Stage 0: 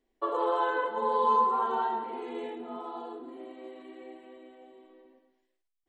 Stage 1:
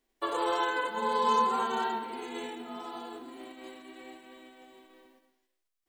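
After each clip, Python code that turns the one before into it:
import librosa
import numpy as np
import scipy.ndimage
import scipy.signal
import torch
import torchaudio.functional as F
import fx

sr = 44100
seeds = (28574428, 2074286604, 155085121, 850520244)

y = fx.envelope_flatten(x, sr, power=0.6)
y = y * 10.0 ** (-1.5 / 20.0)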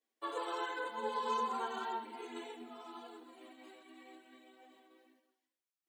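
y = scipy.signal.sosfilt(scipy.signal.butter(2, 230.0, 'highpass', fs=sr, output='sos'), x)
y = fx.chorus_voices(y, sr, voices=6, hz=0.88, base_ms=11, depth_ms=2.2, mix_pct=60)
y = y * 10.0 ** (-6.0 / 20.0)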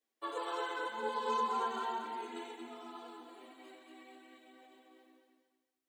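y = fx.echo_feedback(x, sr, ms=228, feedback_pct=29, wet_db=-6)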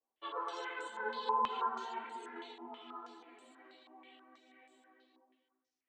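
y = fx.chorus_voices(x, sr, voices=4, hz=1.2, base_ms=14, depth_ms=3.0, mix_pct=35)
y = fx.filter_held_lowpass(y, sr, hz=6.2, low_hz=910.0, high_hz=7800.0)
y = y * 10.0 ** (-3.0 / 20.0)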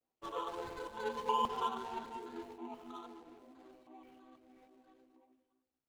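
y = scipy.ndimage.median_filter(x, 25, mode='constant')
y = fx.low_shelf(y, sr, hz=380.0, db=6.5)
y = y * 10.0 ** (1.0 / 20.0)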